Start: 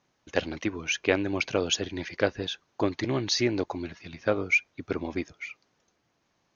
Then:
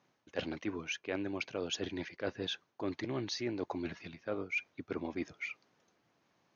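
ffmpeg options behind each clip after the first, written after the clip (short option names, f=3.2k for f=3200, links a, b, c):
-af "highpass=110,highshelf=f=6.3k:g=-10,areverse,acompressor=threshold=-34dB:ratio=6,areverse"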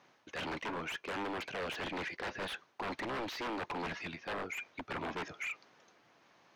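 -filter_complex "[0:a]aeval=exprs='0.0119*(abs(mod(val(0)/0.0119+3,4)-2)-1)':c=same,acrossover=split=3100[a][b];[b]acompressor=threshold=-56dB:ratio=4:attack=1:release=60[c];[a][c]amix=inputs=2:normalize=0,asplit=2[d][e];[e]highpass=f=720:p=1,volume=9dB,asoftclip=type=tanh:threshold=-37.5dB[f];[d][f]amix=inputs=2:normalize=0,lowpass=f=3.9k:p=1,volume=-6dB,volume=6.5dB"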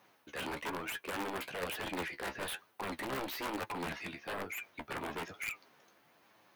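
-filter_complex "[0:a]flanger=delay=9.2:depth=6:regen=35:speed=1.1:shape=sinusoidal,aexciter=amount=5.4:drive=6:freq=8.5k,asplit=2[a][b];[b]acrusher=bits=3:dc=4:mix=0:aa=0.000001,volume=-3dB[c];[a][c]amix=inputs=2:normalize=0,volume=3dB"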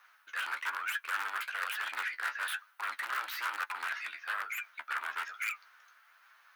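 -af "highpass=f=1.4k:t=q:w=3.8"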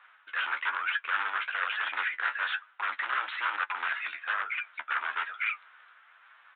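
-af "aresample=8000,aresample=44100,volume=5dB"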